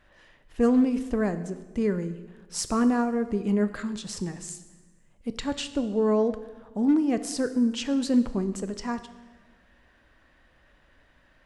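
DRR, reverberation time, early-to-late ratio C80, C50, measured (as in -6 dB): 10.5 dB, 1.3 s, 14.5 dB, 13.0 dB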